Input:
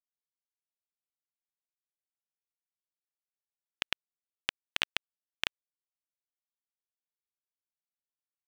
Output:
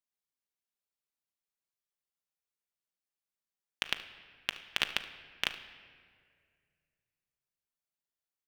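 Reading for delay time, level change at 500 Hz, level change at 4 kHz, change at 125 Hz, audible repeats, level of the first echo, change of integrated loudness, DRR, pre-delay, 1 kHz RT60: 73 ms, +1.0 dB, +0.5 dB, +0.5 dB, 1, -18.0 dB, +0.5 dB, 8.0 dB, 5 ms, 1.8 s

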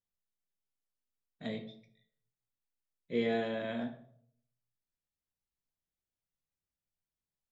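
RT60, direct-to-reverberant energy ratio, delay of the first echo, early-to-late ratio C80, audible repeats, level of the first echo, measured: 0.60 s, 5.5 dB, none, 15.5 dB, none, none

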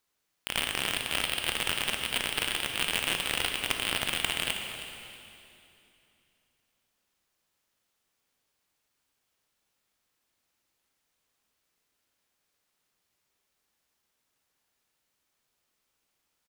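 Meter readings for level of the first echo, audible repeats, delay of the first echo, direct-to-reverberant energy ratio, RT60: -13.5 dB, 2, 0.318 s, 3.5 dB, 2.8 s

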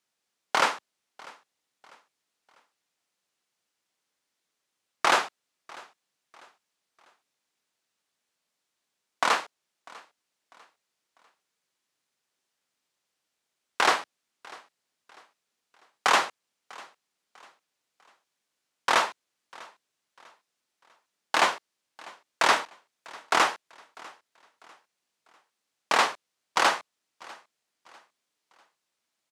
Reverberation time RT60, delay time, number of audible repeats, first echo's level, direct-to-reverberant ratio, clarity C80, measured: none, 0.647 s, 2, -23.0 dB, none, none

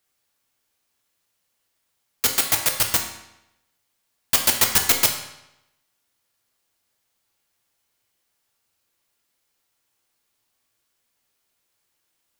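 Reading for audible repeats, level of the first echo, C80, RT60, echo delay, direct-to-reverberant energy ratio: none, none, 9.0 dB, 0.85 s, none, 2.0 dB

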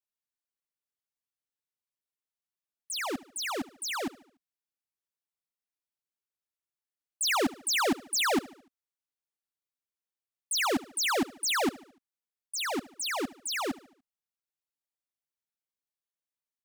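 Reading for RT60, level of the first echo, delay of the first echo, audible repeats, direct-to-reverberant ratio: none, -20.0 dB, 73 ms, 3, none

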